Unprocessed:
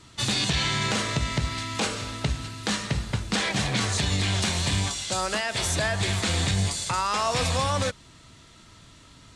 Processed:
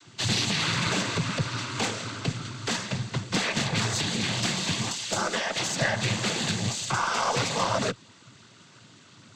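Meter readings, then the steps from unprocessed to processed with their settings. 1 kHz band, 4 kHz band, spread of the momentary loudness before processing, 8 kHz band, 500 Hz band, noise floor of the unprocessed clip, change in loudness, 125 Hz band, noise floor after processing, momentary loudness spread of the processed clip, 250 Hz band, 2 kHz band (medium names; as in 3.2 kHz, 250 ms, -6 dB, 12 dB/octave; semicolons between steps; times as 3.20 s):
-1.0 dB, -1.0 dB, 5 LU, -1.0 dB, -1.0 dB, -52 dBFS, -1.5 dB, -3.5 dB, -54 dBFS, 6 LU, -0.5 dB, 0.0 dB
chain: noise-vocoded speech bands 16; Chebyshev shaper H 2 -14 dB, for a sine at -12.5 dBFS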